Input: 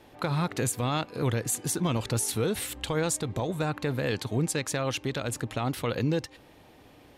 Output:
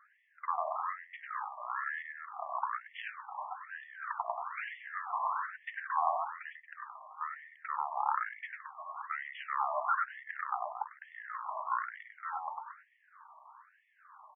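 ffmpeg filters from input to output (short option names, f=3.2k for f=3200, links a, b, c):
-filter_complex "[0:a]equalizer=f=2.1k:t=o:w=0.65:g=12,acrossover=split=350|4200[a][b][c];[b]aecho=1:1:49.56|113.7:0.708|0.316[d];[c]acrusher=samples=28:mix=1:aa=0.000001:lfo=1:lforange=16.8:lforate=2[e];[a][d][e]amix=inputs=3:normalize=0,asetrate=22050,aresample=44100,afftfilt=real='re*between(b*sr/1024,840*pow(2500/840,0.5+0.5*sin(2*PI*1.1*pts/sr))/1.41,840*pow(2500/840,0.5+0.5*sin(2*PI*1.1*pts/sr))*1.41)':imag='im*between(b*sr/1024,840*pow(2500/840,0.5+0.5*sin(2*PI*1.1*pts/sr))/1.41,840*pow(2500/840,0.5+0.5*sin(2*PI*1.1*pts/sr))*1.41)':win_size=1024:overlap=0.75"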